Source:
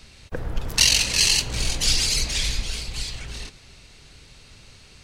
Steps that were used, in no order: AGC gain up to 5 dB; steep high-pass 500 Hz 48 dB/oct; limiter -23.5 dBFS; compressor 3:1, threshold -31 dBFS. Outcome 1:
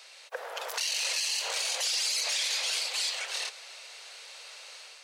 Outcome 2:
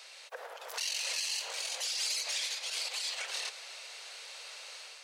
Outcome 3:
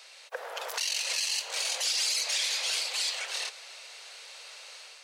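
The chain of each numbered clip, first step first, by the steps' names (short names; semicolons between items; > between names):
steep high-pass > limiter > compressor > AGC; compressor > AGC > limiter > steep high-pass; steep high-pass > compressor > limiter > AGC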